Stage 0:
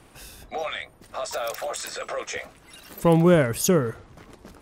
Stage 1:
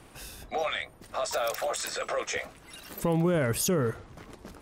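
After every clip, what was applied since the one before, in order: peak limiter -18.5 dBFS, peak gain reduction 11 dB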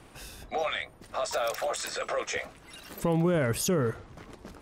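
treble shelf 11 kHz -7 dB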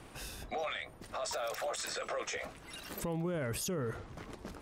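peak limiter -29 dBFS, peak gain reduction 10.5 dB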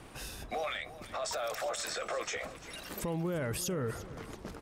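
feedback delay 345 ms, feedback 37%, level -15.5 dB; trim +1.5 dB

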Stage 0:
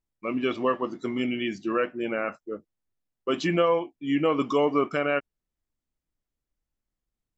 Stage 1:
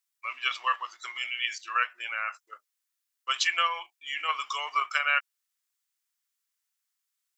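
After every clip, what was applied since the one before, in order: high-pass 1.1 kHz 24 dB/octave; treble shelf 3.7 kHz +9.5 dB; in parallel at +1.5 dB: level held to a coarse grid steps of 15 dB; on the sum: trim -1.5 dB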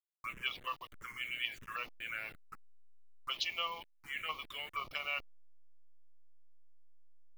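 send-on-delta sampling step -39 dBFS; treble shelf 4.2 kHz -6.5 dB; touch-sensitive phaser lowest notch 450 Hz, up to 1.6 kHz, full sweep at -26.5 dBFS; trim -4 dB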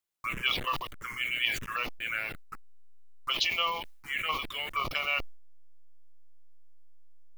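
decay stretcher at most 67 dB/s; trim +7.5 dB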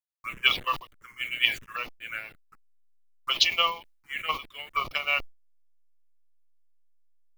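upward expansion 2.5:1, over -41 dBFS; trim +9 dB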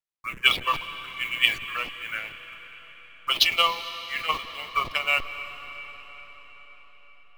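median filter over 5 samples; reverberation RT60 5.3 s, pre-delay 158 ms, DRR 11 dB; trim +3 dB

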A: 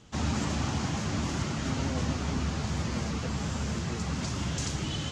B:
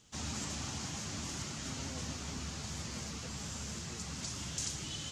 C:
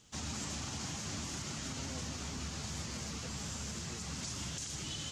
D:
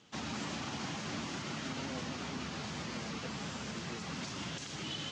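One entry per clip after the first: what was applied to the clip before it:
pre-emphasis filter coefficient 0.8; trim +1.5 dB
peak limiter -31.5 dBFS, peak gain reduction 9.5 dB; trim +1 dB
band-pass 170–3500 Hz; trim +5 dB

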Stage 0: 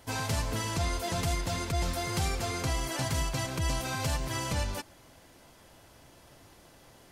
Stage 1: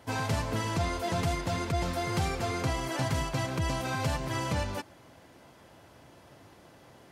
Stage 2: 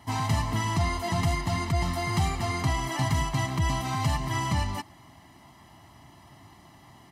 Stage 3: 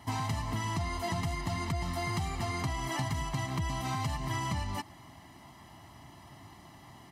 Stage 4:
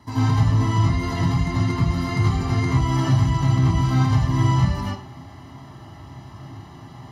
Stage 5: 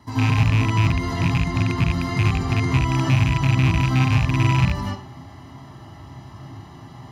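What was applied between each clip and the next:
high-pass 81 Hz; treble shelf 3.7 kHz -10 dB; trim +3 dB
comb 1 ms, depth 88%
compression, threshold -30 dBFS, peak gain reduction 9.5 dB
reverberation RT60 0.50 s, pre-delay 72 ms, DRR -8.5 dB; trim -8 dB
rattle on loud lows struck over -17 dBFS, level -15 dBFS

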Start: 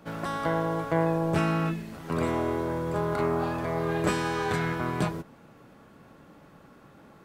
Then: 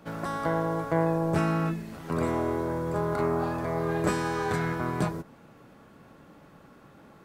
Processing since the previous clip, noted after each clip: dynamic bell 3 kHz, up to -6 dB, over -52 dBFS, Q 1.5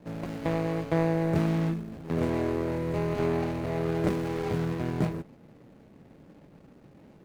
median filter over 41 samples; trim +1.5 dB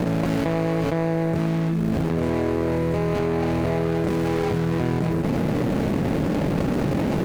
level flattener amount 100%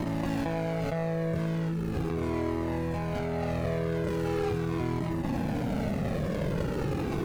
Shepard-style flanger falling 0.4 Hz; trim -2.5 dB

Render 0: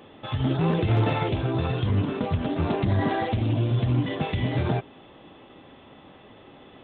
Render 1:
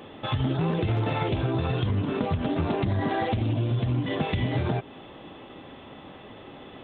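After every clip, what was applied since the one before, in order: compression, threshold -27 dBFS, peak gain reduction 9.5 dB; trim +4.5 dB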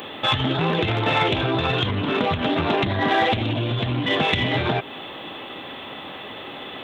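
in parallel at -10 dB: saturation -29 dBFS, distortion -9 dB; on the sum: tilt EQ +3 dB/octave; trim +8 dB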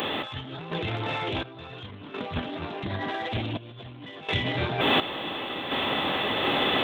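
peak limiter -16 dBFS, peak gain reduction 10 dB; compressor with a negative ratio -31 dBFS, ratio -0.5; random-step tremolo 1.4 Hz, depth 80%; trim +8.5 dB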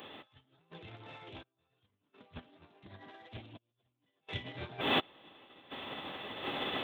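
upward expansion 2.5:1, over -44 dBFS; trim -6 dB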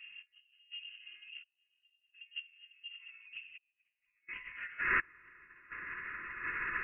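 band-pass sweep 210 Hz -> 1.6 kHz, 2.84–4.95 s; static phaser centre 450 Hz, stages 8; frequency inversion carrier 3 kHz; trim +13 dB

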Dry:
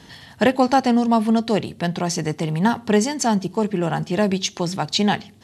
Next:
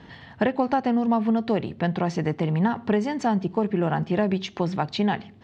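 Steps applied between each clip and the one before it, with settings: compression, threshold -18 dBFS, peak gain reduction 7.5 dB; low-pass 2.4 kHz 12 dB/octave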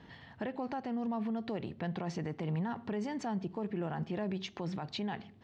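peak limiter -20 dBFS, peak gain reduction 10 dB; trim -8.5 dB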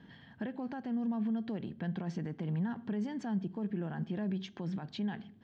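small resonant body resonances 200/1600/3200 Hz, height 10 dB, ringing for 20 ms; trim -7 dB

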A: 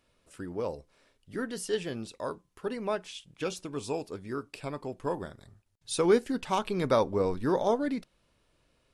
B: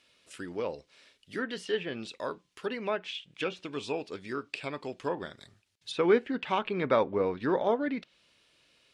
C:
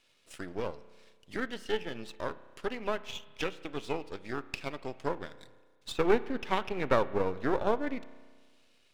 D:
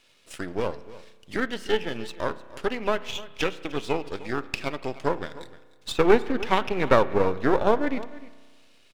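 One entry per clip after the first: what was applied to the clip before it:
frequency weighting D; low-pass that closes with the level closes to 2.1 kHz, closed at -26.5 dBFS; dynamic bell 5.1 kHz, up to -7 dB, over -52 dBFS, Q 1.1
partial rectifier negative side -12 dB; transient shaper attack +3 dB, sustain -4 dB; spring tank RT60 1.6 s, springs 32 ms, chirp 30 ms, DRR 16 dB
delay 303 ms -18 dB; trim +7.5 dB

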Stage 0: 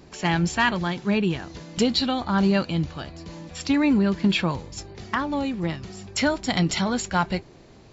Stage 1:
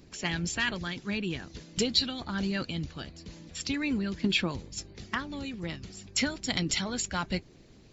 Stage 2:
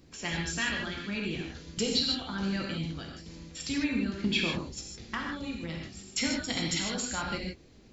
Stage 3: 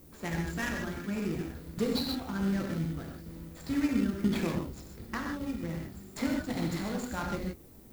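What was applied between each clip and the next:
peaking EQ 880 Hz -9.5 dB 1.7 oct; harmonic-percussive split harmonic -10 dB
reverberation, pre-delay 3 ms, DRR -1 dB; trim -4 dB
median filter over 15 samples; added noise violet -60 dBFS; in parallel at -10.5 dB: sample-and-hold 27×

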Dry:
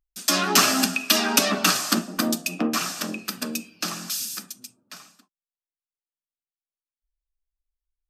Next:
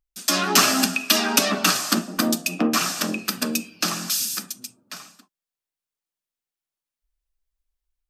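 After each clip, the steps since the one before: level rider gain up to 5 dB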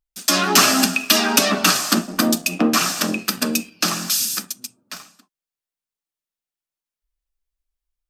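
waveshaping leveller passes 1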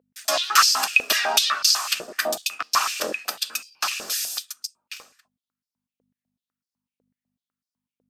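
octave divider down 2 oct, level +3 dB; hum 50 Hz, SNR 25 dB; step-sequenced high-pass 8 Hz 490–4900 Hz; trim -7 dB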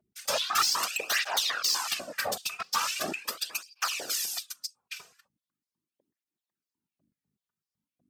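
saturation -19 dBFS, distortion -8 dB; whisper effect; cancelling through-zero flanger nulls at 0.4 Hz, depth 3.7 ms

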